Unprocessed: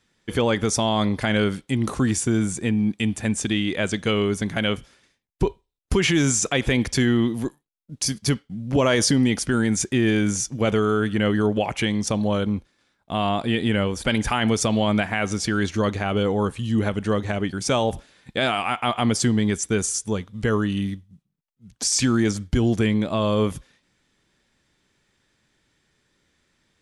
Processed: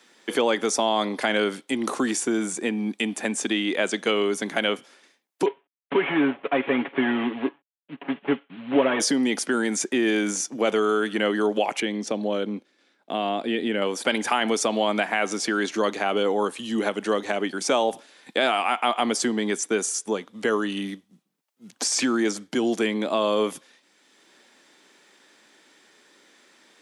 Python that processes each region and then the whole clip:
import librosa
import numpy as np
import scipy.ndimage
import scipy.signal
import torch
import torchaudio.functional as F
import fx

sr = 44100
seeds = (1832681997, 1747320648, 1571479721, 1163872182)

y = fx.chain(x, sr, fx.cvsd(bps=16000),
    fx.comb(ms=7.2, depth=0.68), at=(5.46, 9.0))
y = fx.chain(y, sr, fx.lowpass(hz=2100.0, slope=6),
    fx.peak_eq(hz=990.0, db=-8.0, octaves=1.1), at=(11.8, 13.82))
y = scipy.signal.sosfilt(scipy.signal.butter(4, 260.0, 'highpass', fs=sr, output='sos'), y)
y = fx.peak_eq(y, sr, hz=780.0, db=2.5, octaves=0.77)
y = fx.band_squash(y, sr, depth_pct=40)